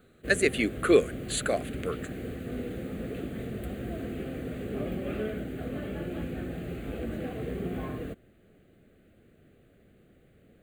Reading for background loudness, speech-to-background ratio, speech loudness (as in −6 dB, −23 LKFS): −36.5 LKFS, 9.0 dB, −27.5 LKFS